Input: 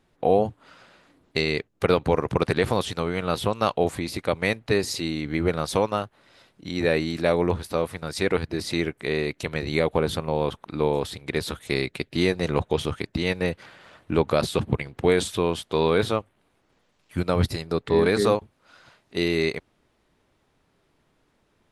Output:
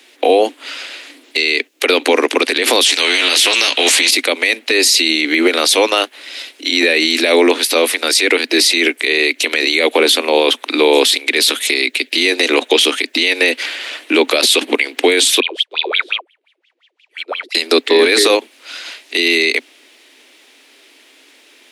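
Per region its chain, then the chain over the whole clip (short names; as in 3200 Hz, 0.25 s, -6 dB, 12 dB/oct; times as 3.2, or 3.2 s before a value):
2.86–4.11 LPF 7700 Hz + doubler 14 ms -5 dB + spectral compressor 2:1
15.4–17.55 tilt +2.5 dB/oct + wah 5.7 Hz 340–3400 Hz, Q 17
whole clip: steep high-pass 250 Hz 96 dB/oct; resonant high shelf 1700 Hz +11 dB, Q 1.5; maximiser +17 dB; gain -1 dB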